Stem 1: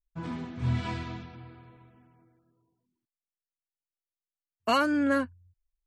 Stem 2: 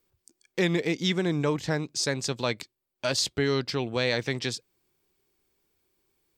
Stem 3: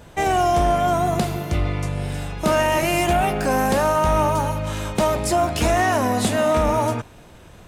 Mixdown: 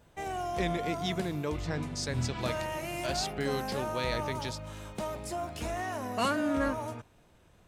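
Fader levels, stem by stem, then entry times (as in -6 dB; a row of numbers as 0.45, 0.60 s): -5.0, -8.0, -16.5 dB; 1.50, 0.00, 0.00 s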